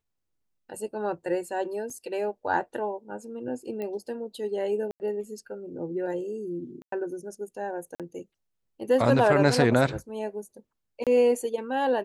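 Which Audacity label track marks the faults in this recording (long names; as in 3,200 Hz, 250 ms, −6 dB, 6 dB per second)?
1.900000	1.900000	drop-out 3.8 ms
3.820000	3.820000	click −23 dBFS
4.910000	5.000000	drop-out 89 ms
6.820000	6.920000	drop-out 103 ms
7.950000	8.000000	drop-out 47 ms
11.040000	11.070000	drop-out 27 ms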